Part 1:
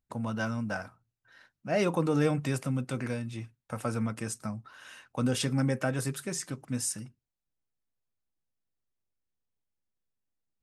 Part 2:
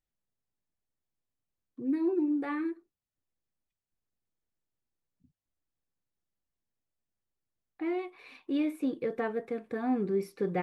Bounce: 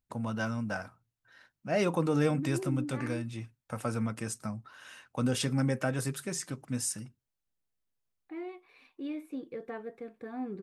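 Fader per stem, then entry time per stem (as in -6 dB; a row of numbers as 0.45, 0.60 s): -1.0, -8.0 dB; 0.00, 0.50 s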